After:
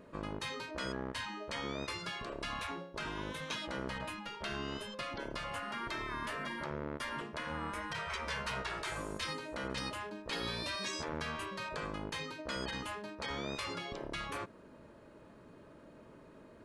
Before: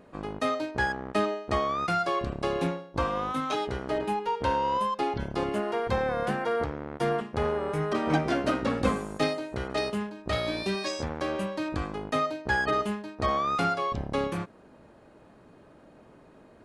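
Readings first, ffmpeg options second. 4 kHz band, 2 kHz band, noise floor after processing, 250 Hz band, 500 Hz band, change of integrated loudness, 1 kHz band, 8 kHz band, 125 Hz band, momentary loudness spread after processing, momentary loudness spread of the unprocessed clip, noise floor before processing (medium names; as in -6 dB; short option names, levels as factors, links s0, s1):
-2.5 dB, -6.5 dB, -57 dBFS, -12.5 dB, -14.0 dB, -10.5 dB, -12.5 dB, -2.0 dB, -11.5 dB, 19 LU, 5 LU, -55 dBFS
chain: -af "afftfilt=real='re*lt(hypot(re,im),0.0891)':imag='im*lt(hypot(re,im),0.0891)':win_size=1024:overlap=0.75,asuperstop=centerf=760:order=4:qfactor=6.3,volume=0.794"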